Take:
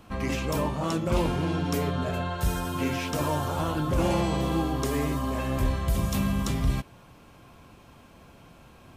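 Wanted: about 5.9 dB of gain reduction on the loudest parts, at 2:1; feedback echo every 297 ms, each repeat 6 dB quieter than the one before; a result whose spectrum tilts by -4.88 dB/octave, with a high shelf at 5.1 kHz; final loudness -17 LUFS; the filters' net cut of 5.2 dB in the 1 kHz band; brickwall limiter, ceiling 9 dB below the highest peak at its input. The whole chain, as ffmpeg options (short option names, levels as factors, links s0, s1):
-af "equalizer=f=1000:t=o:g=-7,highshelf=f=5100:g=9,acompressor=threshold=0.0282:ratio=2,alimiter=level_in=1.06:limit=0.0631:level=0:latency=1,volume=0.944,aecho=1:1:297|594|891|1188|1485|1782:0.501|0.251|0.125|0.0626|0.0313|0.0157,volume=6.31"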